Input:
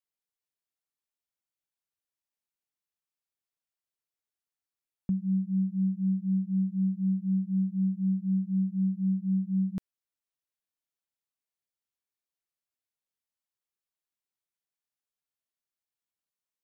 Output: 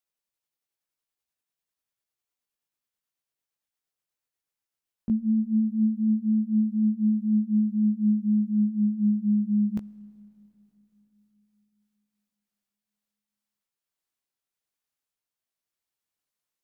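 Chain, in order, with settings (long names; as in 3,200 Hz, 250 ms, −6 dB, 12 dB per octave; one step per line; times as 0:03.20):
pitch glide at a constant tempo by +3.5 semitones ending unshifted
four-comb reverb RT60 3.8 s, combs from 26 ms, DRR 19.5 dB
level +5 dB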